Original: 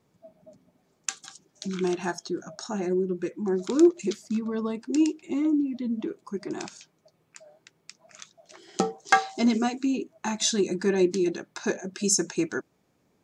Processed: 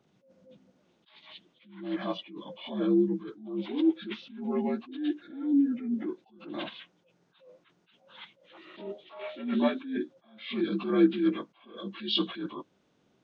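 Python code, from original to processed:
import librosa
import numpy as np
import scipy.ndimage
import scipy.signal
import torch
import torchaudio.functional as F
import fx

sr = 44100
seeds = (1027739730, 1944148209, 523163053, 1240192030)

y = fx.partial_stretch(x, sr, pct=80)
y = fx.attack_slew(y, sr, db_per_s=100.0)
y = y * librosa.db_to_amplitude(2.5)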